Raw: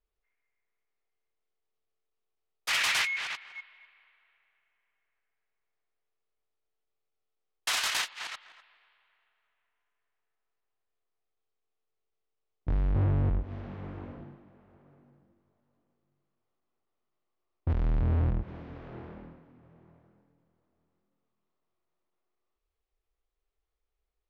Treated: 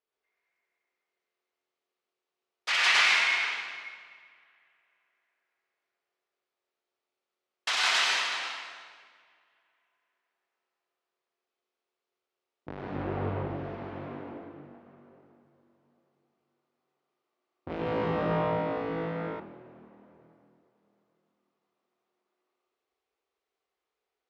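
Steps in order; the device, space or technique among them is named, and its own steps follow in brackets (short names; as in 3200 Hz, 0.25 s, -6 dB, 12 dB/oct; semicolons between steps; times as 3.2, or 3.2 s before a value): supermarket ceiling speaker (BPF 280–5300 Hz; reverb RT60 1.7 s, pre-delay 90 ms, DRR -4 dB); 17.68–19.4 flutter echo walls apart 3.1 m, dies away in 1.2 s; gain +1 dB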